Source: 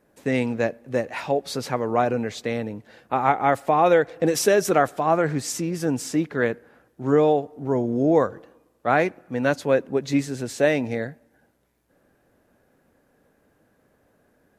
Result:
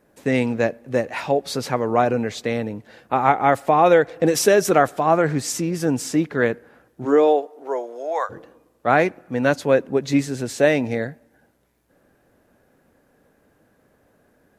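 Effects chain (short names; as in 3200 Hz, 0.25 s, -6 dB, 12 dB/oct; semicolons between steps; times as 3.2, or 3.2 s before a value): 7.04–8.29 HPF 240 Hz -> 780 Hz 24 dB/oct; gain +3 dB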